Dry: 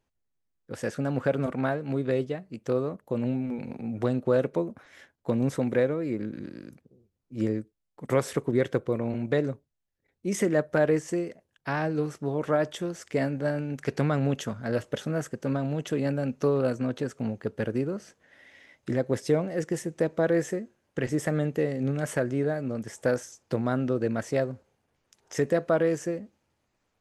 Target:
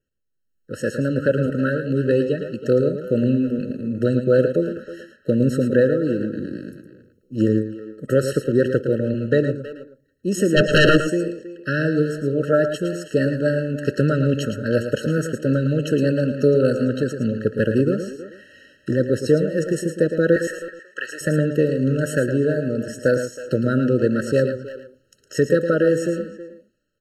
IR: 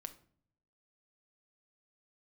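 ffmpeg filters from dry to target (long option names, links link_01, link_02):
-filter_complex "[0:a]asettb=1/sr,asplit=3[link_01][link_02][link_03];[link_01]atrim=end=20.364[link_04];[link_02]atrim=start=20.36:end=21.21,asetpts=PTS-STARTPTS,afade=type=in:duration=0.004:curve=qsin,afade=type=out:start_time=0.846:duration=0.004:curve=qsin,highpass=frequency=1200:width_type=q:width=1.6[link_05];[link_03]atrim=start=21.206[link_06];[link_04][link_05]acrossfade=duration=0.004:curve1=hsin:curve2=qsin[link_07];[link_07][link_06]acrossfade=duration=0.004:curve1=qsin:curve2=hsin,asplit=2[link_08][link_09];[1:a]atrim=start_sample=2205,asetrate=38367,aresample=44100,lowshelf=frequency=200:gain=-7[link_10];[link_09][link_10]afir=irnorm=-1:irlink=0,volume=-7dB[link_11];[link_08][link_11]amix=inputs=2:normalize=0,adynamicequalizer=threshold=0.00126:dfrequency=4100:dqfactor=6.8:tfrequency=4100:tqfactor=6.8:attack=5:release=100:ratio=0.375:range=1.5:mode=boostabove:tftype=bell,dynaudnorm=framelen=130:gausssize=9:maxgain=12dB,asplit=2[link_12][link_13];[link_13]adelay=320,highpass=300,lowpass=3400,asoftclip=type=hard:threshold=-14dB,volume=-12dB[link_14];[link_12][link_14]amix=inputs=2:normalize=0,asplit=3[link_15][link_16][link_17];[link_15]afade=type=out:start_time=10.56:duration=0.02[link_18];[link_16]aeval=exprs='0.596*sin(PI/2*2.82*val(0)/0.596)':channel_layout=same,afade=type=in:start_time=10.56:duration=0.02,afade=type=out:start_time=10.96:duration=0.02[link_19];[link_17]afade=type=in:start_time=10.96:duration=0.02[link_20];[link_18][link_19][link_20]amix=inputs=3:normalize=0,asplit=2[link_21][link_22];[link_22]aecho=0:1:111:0.376[link_23];[link_21][link_23]amix=inputs=2:normalize=0,afftfilt=real='re*eq(mod(floor(b*sr/1024/640),2),0)':imag='im*eq(mod(floor(b*sr/1024/640),2),0)':win_size=1024:overlap=0.75,volume=-3dB"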